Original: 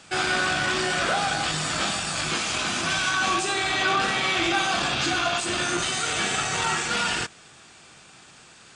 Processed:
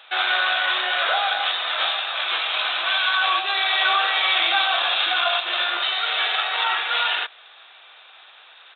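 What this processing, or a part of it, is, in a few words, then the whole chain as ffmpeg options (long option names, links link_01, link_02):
musical greeting card: -af "aresample=8000,aresample=44100,highpass=frequency=590:width=0.5412,highpass=frequency=590:width=1.3066,equalizer=frequency=3800:width_type=o:width=0.33:gain=10.5,volume=3dB"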